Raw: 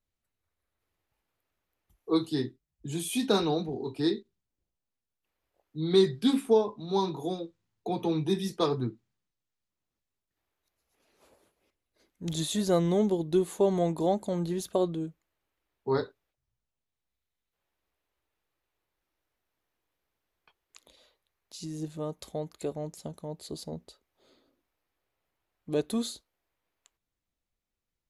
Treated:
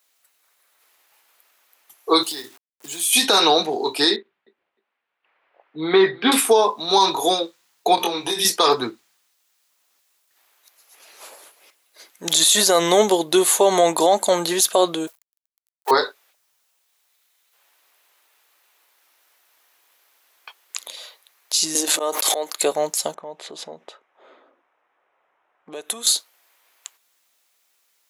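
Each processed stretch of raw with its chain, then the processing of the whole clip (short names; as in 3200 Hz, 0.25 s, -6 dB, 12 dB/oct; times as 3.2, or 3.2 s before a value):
2.23–3.13 companded quantiser 6-bit + compressor 4:1, threshold -46 dBFS
4.16–6.32 LPF 2500 Hz 24 dB/oct + feedback echo 0.305 s, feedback 16%, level -21 dB
7.95–8.45 compressor 12:1, threshold -33 dBFS + doubler 23 ms -3.5 dB
15.07–15.91 G.711 law mismatch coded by A + HPF 530 Hz 24 dB/oct + high shelf 7900 Hz +6.5 dB
21.75–22.57 HPF 260 Hz 24 dB/oct + auto swell 0.125 s + backwards sustainer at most 21 dB/s
23.14–26.07 low-pass opened by the level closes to 1400 Hz, open at -26.5 dBFS + bell 4500 Hz -13.5 dB 0.29 oct + compressor, threshold -44 dBFS
whole clip: HPF 750 Hz 12 dB/oct; high shelf 4800 Hz +6.5 dB; maximiser +26.5 dB; gain -4.5 dB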